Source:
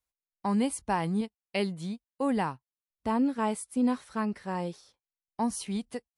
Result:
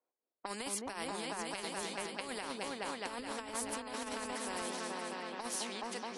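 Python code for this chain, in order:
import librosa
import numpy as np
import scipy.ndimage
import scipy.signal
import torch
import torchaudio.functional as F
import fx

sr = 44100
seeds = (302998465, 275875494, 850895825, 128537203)

p1 = scipy.signal.sosfilt(scipy.signal.butter(4, 310.0, 'highpass', fs=sr, output='sos'), x)
p2 = p1 + fx.echo_opening(p1, sr, ms=212, hz=400, octaves=2, feedback_pct=70, wet_db=0, dry=0)
p3 = fx.env_lowpass(p2, sr, base_hz=660.0, full_db=-29.0)
p4 = fx.over_compress(p3, sr, threshold_db=-32.0, ratio=-0.5)
p5 = fx.spectral_comp(p4, sr, ratio=2.0)
y = F.gain(torch.from_numpy(p5), -3.5).numpy()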